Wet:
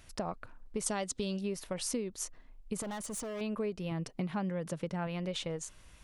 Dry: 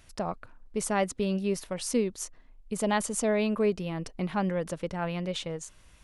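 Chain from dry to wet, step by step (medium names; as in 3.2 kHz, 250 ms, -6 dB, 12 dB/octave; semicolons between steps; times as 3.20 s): 3.91–5.07 s: resonant low shelf 100 Hz -9 dB, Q 3; compression 6:1, threshold -32 dBFS, peak gain reduction 10.5 dB; 0.86–1.41 s: high-order bell 5.2 kHz +9 dB; 2.82–3.41 s: hard clipper -36.5 dBFS, distortion -14 dB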